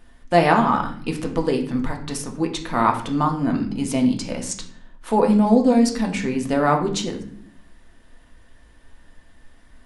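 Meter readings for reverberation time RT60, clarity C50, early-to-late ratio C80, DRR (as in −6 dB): 0.60 s, 9.5 dB, 13.5 dB, 2.0 dB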